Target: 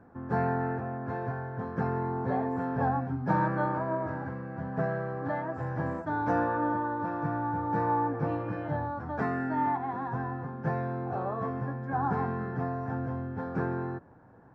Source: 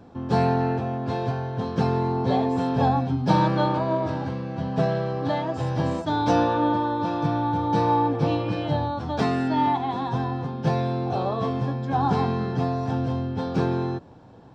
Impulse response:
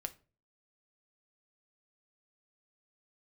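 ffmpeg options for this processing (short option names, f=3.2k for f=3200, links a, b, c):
-af "highshelf=f=2.4k:t=q:w=3:g=-12.5,volume=-8dB"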